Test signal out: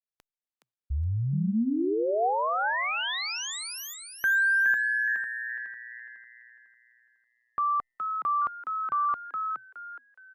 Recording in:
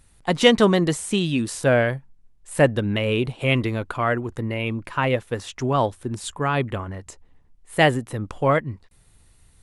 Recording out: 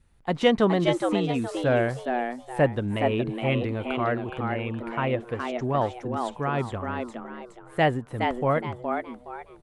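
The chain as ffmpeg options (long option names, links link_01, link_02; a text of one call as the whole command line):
ffmpeg -i in.wav -filter_complex "[0:a]lowpass=frequency=2000:poles=1,adynamicequalizer=threshold=0.01:dfrequency=730:dqfactor=7:tfrequency=730:tqfactor=7:attack=5:release=100:ratio=0.375:range=2:mode=boostabove:tftype=bell,asplit=2[link_01][link_02];[link_02]asplit=4[link_03][link_04][link_05][link_06];[link_03]adelay=418,afreqshift=120,volume=-5dB[link_07];[link_04]adelay=836,afreqshift=240,volume=-15.5dB[link_08];[link_05]adelay=1254,afreqshift=360,volume=-25.9dB[link_09];[link_06]adelay=1672,afreqshift=480,volume=-36.4dB[link_10];[link_07][link_08][link_09][link_10]amix=inputs=4:normalize=0[link_11];[link_01][link_11]amix=inputs=2:normalize=0,volume=-4.5dB" -ar 48000 -c:a libopus -b:a 128k out.opus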